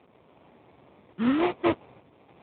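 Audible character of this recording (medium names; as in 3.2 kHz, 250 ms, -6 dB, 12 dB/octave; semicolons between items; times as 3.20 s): a quantiser's noise floor 10-bit, dither triangular; random-step tremolo; aliases and images of a low sample rate 1.6 kHz, jitter 20%; AMR-NB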